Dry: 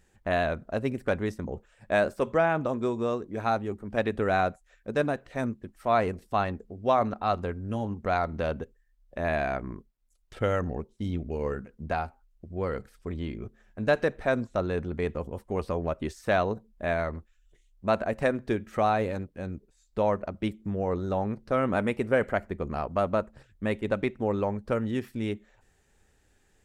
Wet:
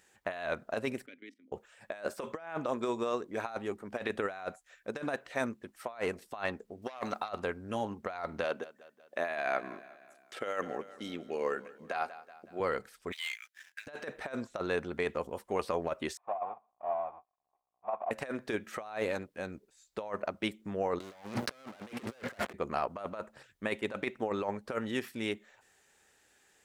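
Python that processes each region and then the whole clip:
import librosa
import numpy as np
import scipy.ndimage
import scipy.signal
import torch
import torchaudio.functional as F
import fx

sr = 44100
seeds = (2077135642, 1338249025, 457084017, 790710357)

y = fx.chain(x, sr, fx.bass_treble(bass_db=-6, treble_db=2),
    fx.level_steps(step_db=16),
    fx.vowel_filter(vowel='i'), at=(1.06, 1.52))
y = fx.chain(y, sr, fx.high_shelf(hz=2700.0, db=11.5),
    fx.transformer_sat(knee_hz=1300.0), at=(6.82, 7.29))
y = fx.chain(y, sr, fx.highpass(hz=230.0, slope=12),
    fx.notch(hz=910.0, q=13.0),
    fx.echo_feedback(ms=186, feedback_pct=54, wet_db=-20.5), at=(8.44, 12.6))
y = fx.chain(y, sr, fx.steep_highpass(hz=1600.0, slope=48),
    fx.leveller(passes=3), at=(13.12, 13.87))
y = fx.chain(y, sr, fx.halfwave_hold(),
    fx.formant_cascade(vowel='a'), at=(16.17, 18.11))
y = fx.chain(y, sr, fx.hum_notches(base_hz=60, count=4),
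    fx.leveller(passes=5),
    fx.band_squash(depth_pct=70), at=(21.0, 22.53))
y = fx.highpass(y, sr, hz=830.0, slope=6)
y = fx.over_compress(y, sr, threshold_db=-34.0, ratio=-0.5)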